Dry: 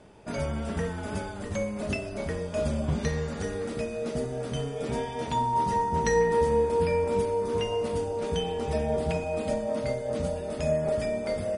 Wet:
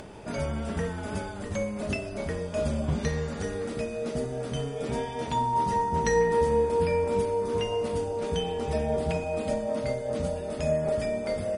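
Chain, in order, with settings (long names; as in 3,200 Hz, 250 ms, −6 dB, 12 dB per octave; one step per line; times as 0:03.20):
upward compression, threshold −35 dBFS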